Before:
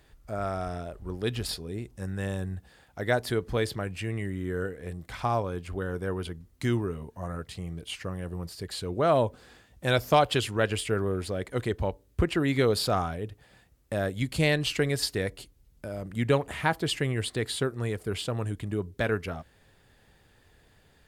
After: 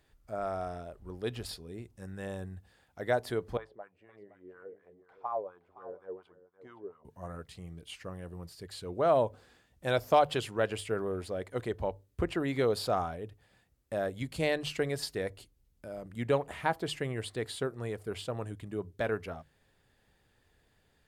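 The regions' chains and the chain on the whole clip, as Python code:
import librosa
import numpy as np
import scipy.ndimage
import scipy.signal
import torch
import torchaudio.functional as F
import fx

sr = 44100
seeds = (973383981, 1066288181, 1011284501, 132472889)

y = fx.chain(x, sr, fx.wah_lfo(hz=4.2, low_hz=420.0, high_hz=1200.0, q=3.5),
    fx.echo_single(ms=518, db=-12.0), at=(3.57, 7.05))
y = fx.hum_notches(y, sr, base_hz=50, count=3)
y = fx.dynamic_eq(y, sr, hz=670.0, q=0.74, threshold_db=-40.0, ratio=4.0, max_db=7)
y = y * librosa.db_to_amplitude(-8.5)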